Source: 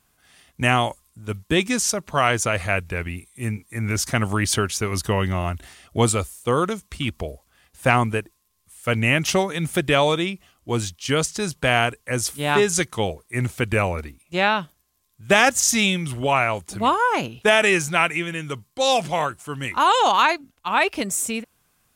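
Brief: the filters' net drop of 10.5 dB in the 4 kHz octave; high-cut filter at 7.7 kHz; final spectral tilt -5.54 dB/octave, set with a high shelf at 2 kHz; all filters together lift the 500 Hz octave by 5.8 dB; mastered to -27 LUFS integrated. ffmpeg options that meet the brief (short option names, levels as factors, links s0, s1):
-af "lowpass=7700,equalizer=f=500:t=o:g=8,highshelf=f=2000:g=-8.5,equalizer=f=4000:t=o:g=-6,volume=0.473"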